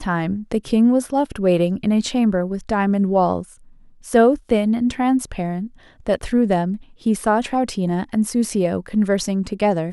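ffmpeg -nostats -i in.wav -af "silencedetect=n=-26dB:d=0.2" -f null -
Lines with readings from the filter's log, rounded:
silence_start: 3.42
silence_end: 4.08 | silence_duration: 0.65
silence_start: 5.66
silence_end: 6.07 | silence_duration: 0.40
silence_start: 6.76
silence_end: 7.06 | silence_duration: 0.30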